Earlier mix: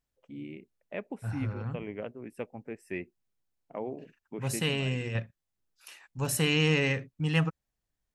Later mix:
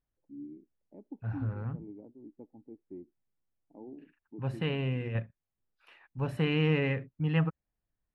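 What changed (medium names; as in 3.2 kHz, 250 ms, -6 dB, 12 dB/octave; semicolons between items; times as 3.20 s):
first voice: add cascade formant filter u; master: add distance through air 480 m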